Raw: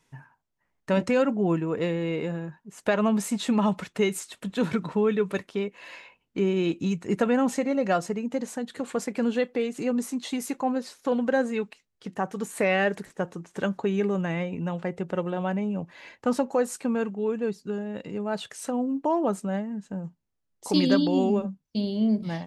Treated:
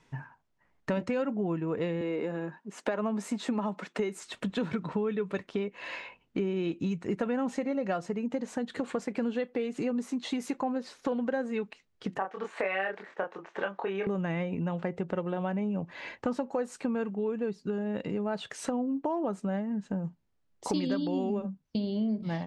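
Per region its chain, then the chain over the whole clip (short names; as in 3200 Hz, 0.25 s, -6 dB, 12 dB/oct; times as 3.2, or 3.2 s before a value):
2.01–4.22 HPF 210 Hz 24 dB/oct + dynamic EQ 3100 Hz, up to -6 dB, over -45 dBFS, Q 1.4
12.18–14.07 BPF 570–2900 Hz + doubler 26 ms -3 dB
whole clip: LPF 9100 Hz 12 dB/oct; high shelf 5800 Hz -11.5 dB; compressor 4:1, threshold -36 dBFS; gain +6 dB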